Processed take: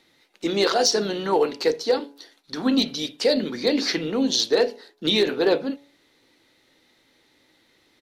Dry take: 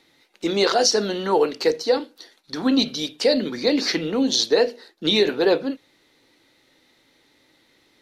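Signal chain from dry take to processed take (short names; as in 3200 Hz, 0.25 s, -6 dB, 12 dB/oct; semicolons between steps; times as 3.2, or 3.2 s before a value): overloaded stage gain 10 dB; harmoniser -3 st -15 dB; de-hum 141.4 Hz, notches 7; gain -1.5 dB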